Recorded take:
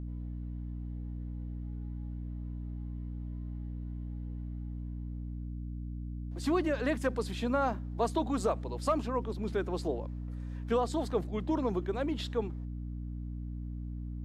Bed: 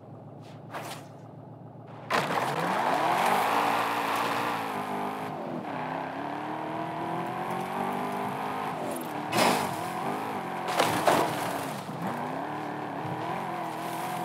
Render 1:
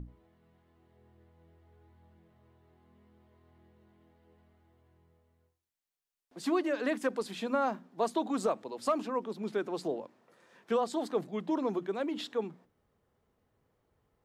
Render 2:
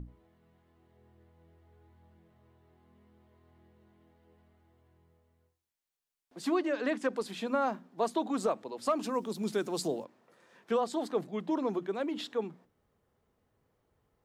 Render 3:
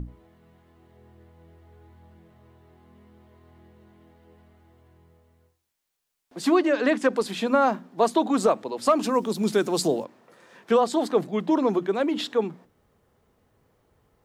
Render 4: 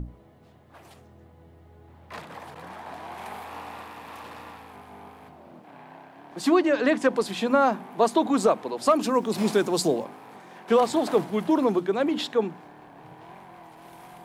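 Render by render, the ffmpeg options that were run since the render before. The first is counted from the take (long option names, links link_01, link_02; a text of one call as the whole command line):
ffmpeg -i in.wav -af "bandreject=frequency=60:width_type=h:width=6,bandreject=frequency=120:width_type=h:width=6,bandreject=frequency=180:width_type=h:width=6,bandreject=frequency=240:width_type=h:width=6,bandreject=frequency=300:width_type=h:width=6" out.wav
ffmpeg -i in.wav -filter_complex "[0:a]asettb=1/sr,asplit=3[link_01][link_02][link_03];[link_01]atrim=end=6.544[link_04];[link_02]atrim=start=6.54:end=7.13,asetpts=PTS-STARTPTS,afade=type=in:duration=0.004:curve=qsin,afade=type=out:start_time=0.586:duration=0.004:curve=qsin,lowpass=7900[link_05];[link_03]atrim=start=7.126[link_06];[link_04][link_05]acrossfade=duration=0.004:curve1=hsin:curve2=qsin[link_07];[link_07][link_06]acrossfade=duration=0.004:curve1=qsin:curve2=hsin,asplit=3[link_08][link_09][link_10];[link_08]afade=type=out:start_time=9.02:duration=0.02[link_11];[link_09]bass=frequency=250:gain=6,treble=frequency=4000:gain=15,afade=type=in:start_time=9.02:duration=0.02,afade=type=out:start_time=10.03:duration=0.02[link_12];[link_10]afade=type=in:start_time=10.03:duration=0.02[link_13];[link_11][link_12][link_13]amix=inputs=3:normalize=0" out.wav
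ffmpeg -i in.wav -af "volume=9.5dB" out.wav
ffmpeg -i in.wav -i bed.wav -filter_complex "[1:a]volume=-13.5dB[link_01];[0:a][link_01]amix=inputs=2:normalize=0" out.wav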